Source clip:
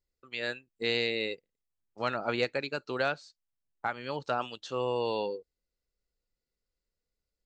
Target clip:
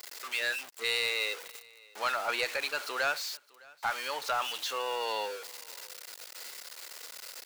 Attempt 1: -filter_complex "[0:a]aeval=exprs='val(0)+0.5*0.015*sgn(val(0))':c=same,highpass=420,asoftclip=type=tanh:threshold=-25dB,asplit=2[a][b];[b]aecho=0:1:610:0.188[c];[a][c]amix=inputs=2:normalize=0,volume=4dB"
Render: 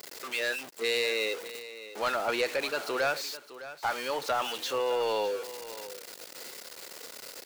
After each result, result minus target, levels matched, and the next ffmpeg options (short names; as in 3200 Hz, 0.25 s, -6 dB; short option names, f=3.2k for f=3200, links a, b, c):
echo-to-direct +10 dB; 500 Hz band +5.5 dB
-filter_complex "[0:a]aeval=exprs='val(0)+0.5*0.015*sgn(val(0))':c=same,highpass=420,asoftclip=type=tanh:threshold=-25dB,asplit=2[a][b];[b]aecho=0:1:610:0.0596[c];[a][c]amix=inputs=2:normalize=0,volume=4dB"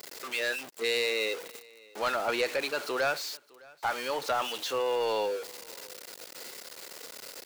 500 Hz band +5.0 dB
-filter_complex "[0:a]aeval=exprs='val(0)+0.5*0.015*sgn(val(0))':c=same,highpass=880,asoftclip=type=tanh:threshold=-25dB,asplit=2[a][b];[b]aecho=0:1:610:0.0596[c];[a][c]amix=inputs=2:normalize=0,volume=4dB"